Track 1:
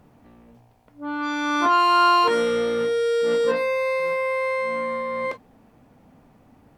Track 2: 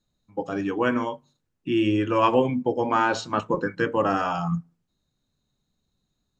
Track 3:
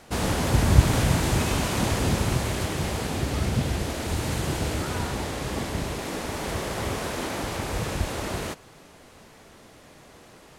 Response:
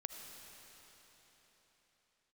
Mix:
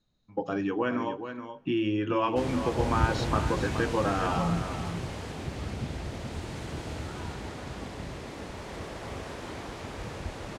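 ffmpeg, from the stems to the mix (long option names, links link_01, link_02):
-filter_complex "[1:a]lowpass=frequency=5900:width=0.5412,lowpass=frequency=5900:width=1.3066,acompressor=threshold=-28dB:ratio=3,volume=0.5dB,asplit=3[link_01][link_02][link_03];[link_02]volume=-18.5dB[link_04];[link_03]volume=-8.5dB[link_05];[2:a]equalizer=frequency=14000:width_type=o:width=1:gain=-14.5,adelay=2250,volume=-10dB,asplit=2[link_06][link_07];[link_07]volume=-5dB[link_08];[3:a]atrim=start_sample=2205[link_09];[link_04][link_09]afir=irnorm=-1:irlink=0[link_10];[link_05][link_08]amix=inputs=2:normalize=0,aecho=0:1:423:1[link_11];[link_01][link_06][link_10][link_11]amix=inputs=4:normalize=0"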